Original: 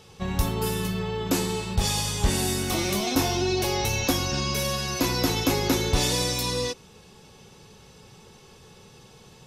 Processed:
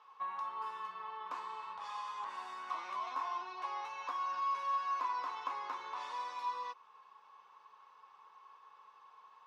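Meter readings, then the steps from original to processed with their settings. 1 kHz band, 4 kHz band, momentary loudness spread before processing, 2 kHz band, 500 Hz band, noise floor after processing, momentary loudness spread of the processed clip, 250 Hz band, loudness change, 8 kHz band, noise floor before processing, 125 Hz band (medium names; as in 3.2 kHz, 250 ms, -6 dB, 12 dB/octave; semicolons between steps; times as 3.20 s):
-3.5 dB, -25.5 dB, 5 LU, -16.0 dB, -27.0 dB, -62 dBFS, 24 LU, under -35 dB, -14.5 dB, under -30 dB, -51 dBFS, under -40 dB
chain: compression 2:1, threshold -29 dBFS, peak gain reduction 7.5 dB; ladder band-pass 1.1 kHz, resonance 85%; trim +2 dB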